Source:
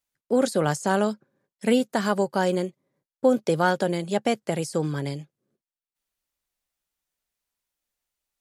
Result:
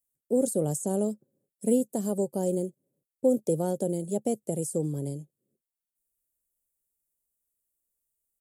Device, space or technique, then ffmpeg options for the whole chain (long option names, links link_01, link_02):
exciter from parts: -filter_complex "[0:a]asplit=2[link_01][link_02];[link_02]highpass=frequency=3200:width=0.5412,highpass=frequency=3200:width=1.3066,asoftclip=type=tanh:threshold=-25.5dB,highpass=frequency=2100:width=0.5412,highpass=frequency=2100:width=1.3066,volume=-8dB[link_03];[link_01][link_03]amix=inputs=2:normalize=0,firequalizer=gain_entry='entry(500,0);entry(1000,-18);entry(1500,-27);entry(8000,6)':delay=0.05:min_phase=1,volume=-3dB"